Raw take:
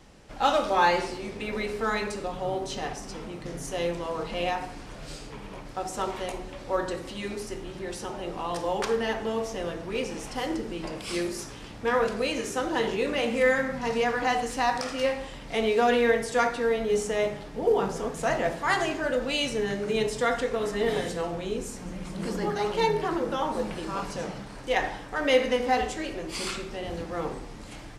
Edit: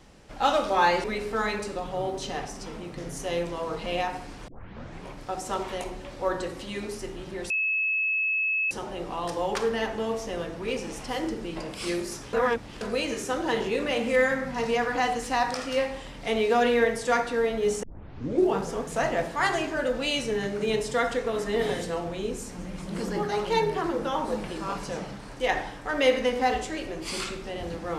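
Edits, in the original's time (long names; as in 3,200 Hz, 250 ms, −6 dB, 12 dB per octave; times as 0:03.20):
0:01.04–0:01.52: remove
0:04.96: tape start 0.59 s
0:07.98: insert tone 2,590 Hz −23 dBFS 1.21 s
0:11.60–0:12.08: reverse
0:17.10: tape start 0.73 s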